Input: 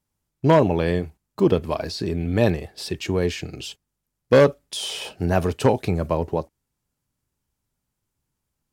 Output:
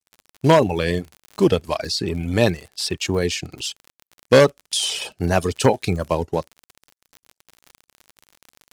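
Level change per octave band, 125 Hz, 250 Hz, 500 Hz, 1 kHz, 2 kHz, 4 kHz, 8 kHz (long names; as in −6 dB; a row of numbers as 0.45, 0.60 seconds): +0.5, +0.5, +1.5, +2.5, +4.0, +6.5, +9.0 decibels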